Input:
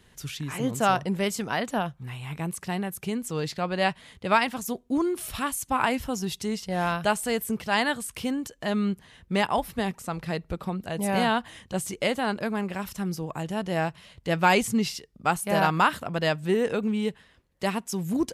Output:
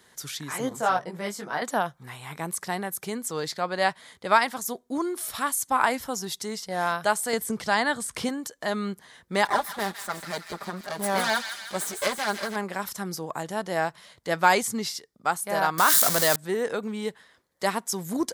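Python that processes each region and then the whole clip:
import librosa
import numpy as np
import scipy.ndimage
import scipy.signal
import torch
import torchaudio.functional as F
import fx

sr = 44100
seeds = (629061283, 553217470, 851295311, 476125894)

y = fx.chain(x, sr, fx.high_shelf(hz=3500.0, db=-7.5),
    fx.detune_double(cents=13), at=(0.69, 1.62))
y = fx.chain(y, sr, fx.lowpass(hz=9500.0, slope=12),
    fx.low_shelf(hz=170.0, db=11.5),
    fx.band_squash(depth_pct=70), at=(7.33, 8.29))
y = fx.chain(y, sr, fx.lower_of_two(delay_ms=5.0),
    fx.echo_wet_highpass(ms=159, feedback_pct=56, hz=1800.0, wet_db=-6), at=(9.45, 12.56))
y = fx.chain(y, sr, fx.crossing_spikes(level_db=-17.0),
    fx.notch(hz=860.0, q=15.0),
    fx.env_flatten(amount_pct=70), at=(15.78, 16.36))
y = fx.highpass(y, sr, hz=670.0, slope=6)
y = fx.peak_eq(y, sr, hz=2700.0, db=-11.5, octaves=0.42)
y = fx.rider(y, sr, range_db=3, speed_s=2.0)
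y = y * 10.0 ** (3.0 / 20.0)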